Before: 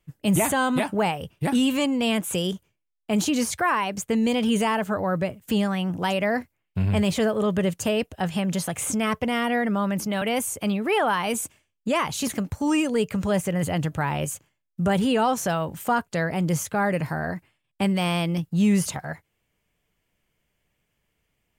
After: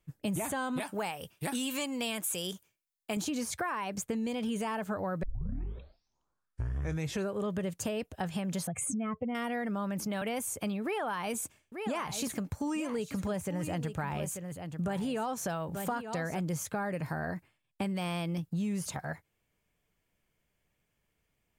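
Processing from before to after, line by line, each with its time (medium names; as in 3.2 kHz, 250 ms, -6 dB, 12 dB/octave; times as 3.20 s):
0.80–3.17 s: tilt EQ +2.5 dB/octave
5.23 s: tape start 2.24 s
8.67–9.35 s: spectral contrast enhancement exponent 1.9
10.83–16.40 s: delay 888 ms -12 dB
whole clip: peaking EQ 2.9 kHz -4 dB 0.25 oct; band-stop 2 kHz, Q 27; compression, threshold -27 dBFS; trim -4 dB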